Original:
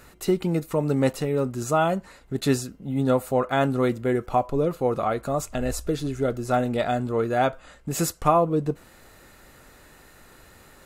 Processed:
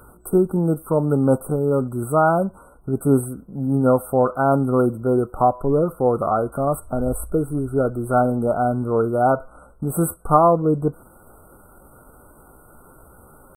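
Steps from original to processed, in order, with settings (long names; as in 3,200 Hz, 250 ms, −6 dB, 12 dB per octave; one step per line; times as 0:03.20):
brick-wall band-stop 1,500–8,000 Hz
tempo change 0.8×
level +4.5 dB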